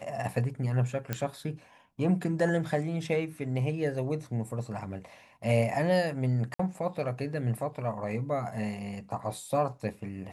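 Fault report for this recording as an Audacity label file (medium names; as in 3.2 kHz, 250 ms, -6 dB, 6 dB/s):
1.130000	1.130000	pop -15 dBFS
6.540000	6.590000	dropout 54 ms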